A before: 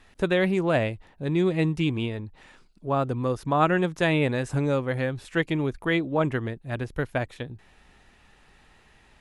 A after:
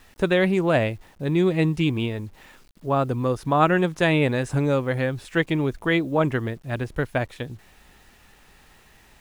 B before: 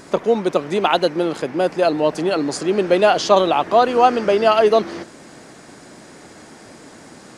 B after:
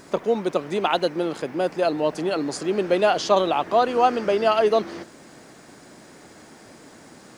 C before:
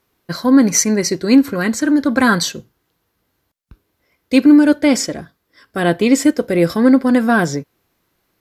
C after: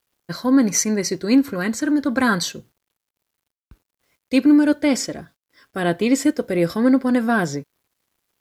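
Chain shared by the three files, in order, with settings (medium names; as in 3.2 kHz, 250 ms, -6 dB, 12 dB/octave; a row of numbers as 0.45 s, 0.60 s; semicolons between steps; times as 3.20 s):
bit crusher 10-bit; peak normalisation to -6 dBFS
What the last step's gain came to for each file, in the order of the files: +3.0 dB, -5.0 dB, -5.0 dB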